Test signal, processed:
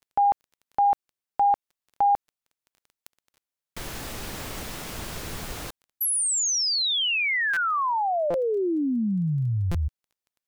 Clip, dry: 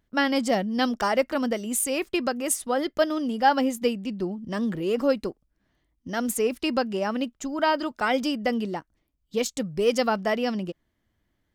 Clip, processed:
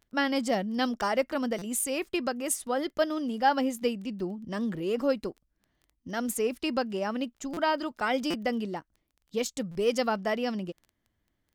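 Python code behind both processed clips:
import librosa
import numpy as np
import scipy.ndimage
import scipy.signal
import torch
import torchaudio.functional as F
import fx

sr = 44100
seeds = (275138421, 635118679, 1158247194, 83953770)

y = fx.dmg_crackle(x, sr, seeds[0], per_s=12.0, level_db=-39.0)
y = fx.buffer_glitch(y, sr, at_s=(1.58, 7.53, 8.3, 9.71), block=256, repeats=6)
y = y * librosa.db_to_amplitude(-4.0)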